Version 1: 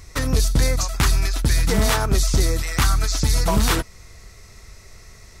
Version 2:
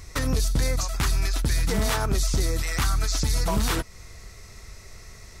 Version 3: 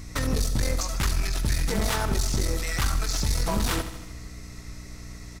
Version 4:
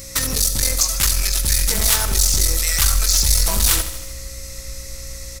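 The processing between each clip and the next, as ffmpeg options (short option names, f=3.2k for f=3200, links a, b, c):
-af "alimiter=limit=-15.5dB:level=0:latency=1:release=195"
-filter_complex "[0:a]aeval=exprs='clip(val(0),-1,0.0596)':c=same,aeval=exprs='val(0)+0.01*(sin(2*PI*60*n/s)+sin(2*PI*2*60*n/s)/2+sin(2*PI*3*60*n/s)/3+sin(2*PI*4*60*n/s)/4+sin(2*PI*5*60*n/s)/5)':c=same,asplit=2[a][b];[b]aecho=0:1:77|154|231|308|385|462|539:0.266|0.157|0.0926|0.0546|0.0322|0.019|0.0112[c];[a][c]amix=inputs=2:normalize=0"
-af "asubboost=boost=4:cutoff=83,crystalizer=i=7:c=0,aeval=exprs='val(0)+0.00794*sin(2*PI*540*n/s)':c=same,volume=-1.5dB"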